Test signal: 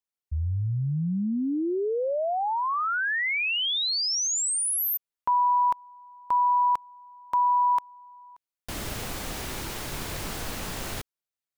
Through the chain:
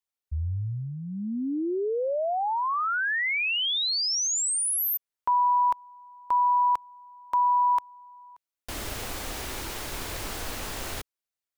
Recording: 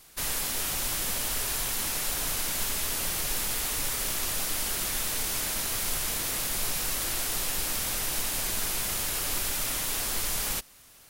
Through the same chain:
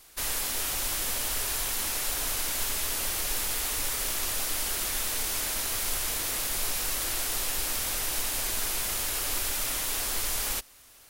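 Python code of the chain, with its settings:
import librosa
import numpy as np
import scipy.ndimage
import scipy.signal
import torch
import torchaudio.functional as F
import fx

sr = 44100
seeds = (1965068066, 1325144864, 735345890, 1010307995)

y = fx.peak_eq(x, sr, hz=160.0, db=-9.0, octaves=0.82)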